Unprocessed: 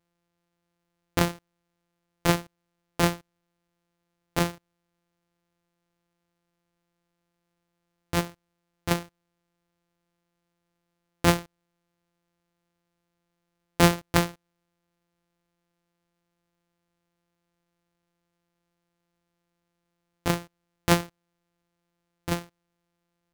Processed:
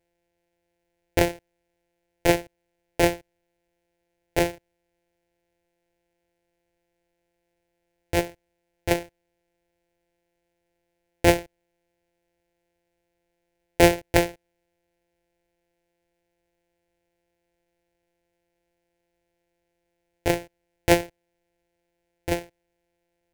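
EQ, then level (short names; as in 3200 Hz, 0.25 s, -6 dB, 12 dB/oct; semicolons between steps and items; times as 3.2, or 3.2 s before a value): resonant high shelf 2800 Hz -6 dB, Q 1.5; fixed phaser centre 490 Hz, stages 4; +7.5 dB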